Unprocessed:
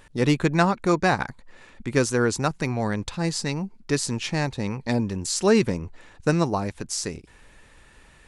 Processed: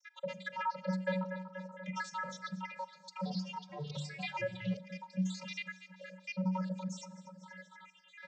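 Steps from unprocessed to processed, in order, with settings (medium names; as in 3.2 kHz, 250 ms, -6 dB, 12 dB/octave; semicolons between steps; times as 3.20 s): random holes in the spectrogram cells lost 78%; feedback delay 239 ms, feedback 51%, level -21 dB; overload inside the chain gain 17.5 dB; hum notches 60/120/180/240/300/360/420/480/540 Hz; peak limiter -27 dBFS, peak gain reduction 11.5 dB; three-band isolator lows -18 dB, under 270 Hz, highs -13 dB, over 6 kHz; vocoder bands 32, square 186 Hz; Schroeder reverb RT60 0.69 s, combs from 28 ms, DRR 18.5 dB; 2.77–4.77 s: ever faster or slower copies 460 ms, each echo -4 st, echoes 2, each echo -6 dB; three bands compressed up and down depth 40%; trim +4.5 dB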